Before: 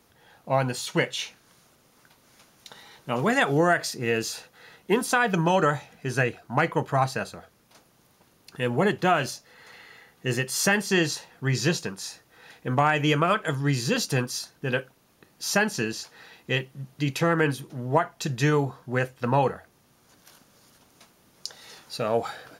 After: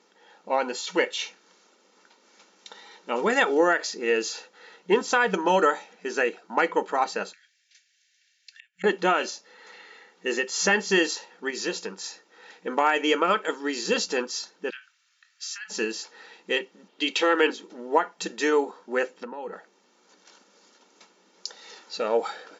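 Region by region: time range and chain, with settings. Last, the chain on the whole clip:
7.33–8.84 steep high-pass 1600 Hz 96 dB/oct + flipped gate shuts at -31 dBFS, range -28 dB
11.5–12.04 LPF 9500 Hz + compressor 1.5:1, threshold -31 dBFS + mismatched tape noise reduction decoder only
14.7–15.7 compressor, threshold -31 dBFS + steep high-pass 1400 Hz + doubler 23 ms -12.5 dB
16.88–17.5 steep high-pass 210 Hz + bell 3200 Hz +11 dB 0.75 oct + mismatched tape noise reduction decoder only
19.1–19.53 low shelf 360 Hz +9 dB + compressor 16:1, threshold -30 dBFS
whole clip: comb 2.2 ms, depth 45%; FFT band-pass 180–7500 Hz

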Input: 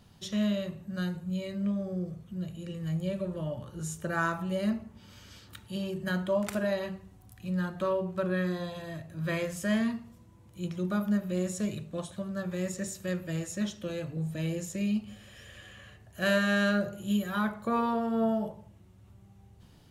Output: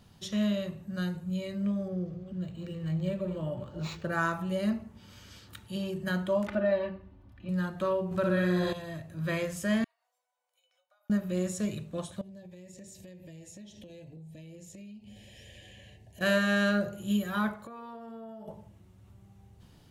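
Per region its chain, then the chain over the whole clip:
1.88–4.12 reverse delay 0.221 s, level -11 dB + decimation joined by straight lines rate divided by 4×
6.47–7.49 air absorption 340 m + comb 3.4 ms, depth 81%
8.11–8.73 flutter echo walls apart 10.5 m, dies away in 1 s + fast leveller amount 50%
9.84–11.1 compressor 12:1, threshold -41 dBFS + brick-wall FIR high-pass 480 Hz + resonator 750 Hz, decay 0.25 s, mix 90%
12.21–16.21 Butterworth band-stop 1300 Hz, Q 1.2 + high shelf 11000 Hz -6.5 dB + compressor 10:1, threshold -45 dBFS
17.55–18.48 tone controls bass -5 dB, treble -1 dB + compressor 8:1, threshold -42 dBFS
whole clip: dry

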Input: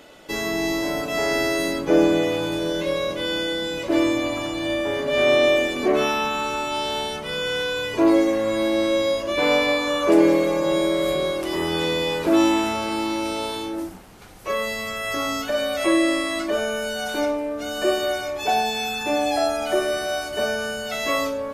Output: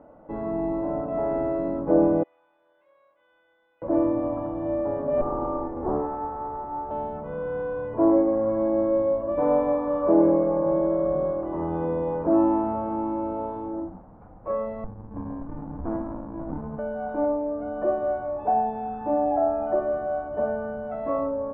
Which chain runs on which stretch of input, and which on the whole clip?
2.23–3.82 Butterworth band-pass 5300 Hz, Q 0.94 + air absorption 220 m + companded quantiser 8-bit
5.21–6.91 minimum comb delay 2.4 ms + LPF 1300 Hz
14.84–16.79 dynamic EQ 620 Hz, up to -6 dB, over -36 dBFS, Q 1.4 + running maximum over 65 samples
whole clip: LPF 1000 Hz 24 dB/oct; bell 390 Hz -13.5 dB 0.22 oct

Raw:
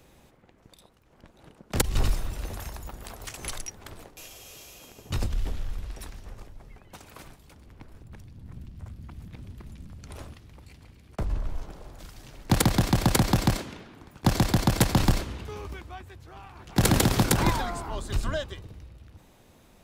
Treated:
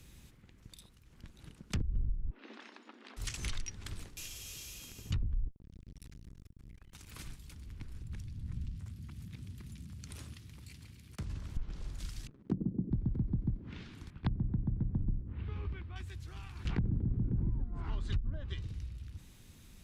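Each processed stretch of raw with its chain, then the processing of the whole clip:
2.3–3.17 brick-wall FIR band-pass 220–10000 Hz + air absorption 320 m
5.48–7.12 compressor 3:1, threshold -44 dBFS + core saturation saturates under 440 Hz
8.77–11.57 HPF 98 Hz + high shelf 8500 Hz +3.5 dB + compressor 1.5:1, threshold -47 dBFS
12.27–12.91 Chebyshev band-pass 180–450 Hz + sample leveller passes 2
14.1–15.96 air absorption 470 m + notches 60/120/180/240/300/360/420 Hz
16.65–17.64 CVSD 64 kbps + LPF 2300 Hz 6 dB/oct + fast leveller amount 50%
whole clip: treble ducked by the level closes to 340 Hz, closed at -21.5 dBFS; passive tone stack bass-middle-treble 6-0-2; compressor 4:1, threshold -48 dBFS; gain +16.5 dB

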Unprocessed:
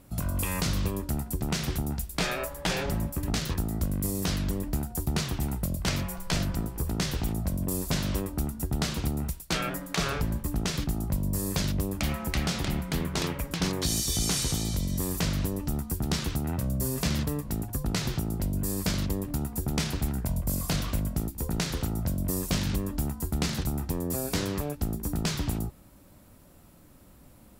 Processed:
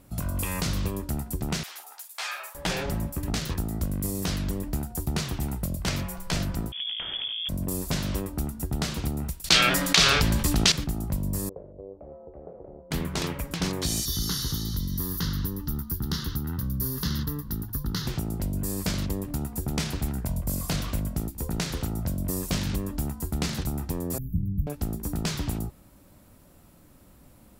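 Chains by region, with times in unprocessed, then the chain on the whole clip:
1.63–2.55 HPF 770 Hz 24 dB/oct + doubler 48 ms -8.5 dB + ensemble effect
6.72–7.49 compressor, threshold -29 dBFS + inverted band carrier 3400 Hz
9.44–10.72 bell 4000 Hz +14 dB 2.4 oct + fast leveller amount 50%
11.49–12.91 ladder low-pass 610 Hz, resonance 45% + resonant low shelf 330 Hz -11.5 dB, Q 1.5
14.05–18.07 high shelf 9200 Hz +9.5 dB + fixed phaser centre 2400 Hz, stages 6
24.18–24.67 inverse Chebyshev band-stop 770–5500 Hz, stop band 70 dB + tilt -2 dB/oct
whole clip: dry

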